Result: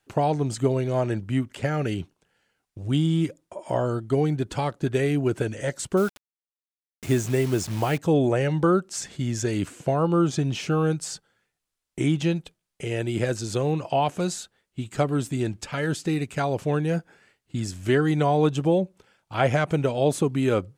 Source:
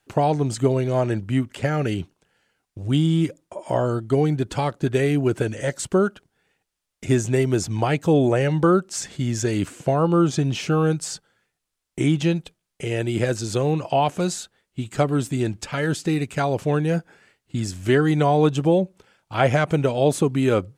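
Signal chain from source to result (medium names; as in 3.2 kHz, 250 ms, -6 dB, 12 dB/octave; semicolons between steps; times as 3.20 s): 5.97–7.98 s: word length cut 6-bit, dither none; trim -3 dB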